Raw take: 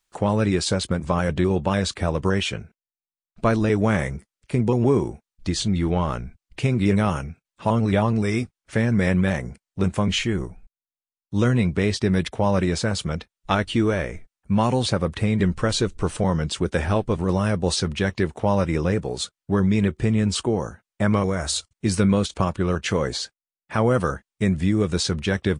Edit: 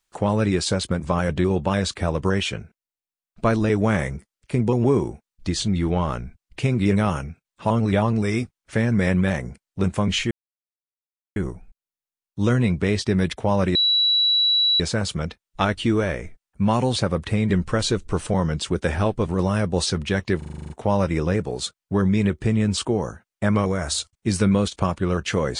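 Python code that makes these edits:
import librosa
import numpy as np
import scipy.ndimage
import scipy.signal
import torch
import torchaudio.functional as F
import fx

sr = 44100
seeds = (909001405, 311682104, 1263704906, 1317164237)

y = fx.edit(x, sr, fx.insert_silence(at_s=10.31, length_s=1.05),
    fx.insert_tone(at_s=12.7, length_s=1.05, hz=3920.0, db=-15.5),
    fx.stutter(start_s=18.28, slice_s=0.04, count=9), tone=tone)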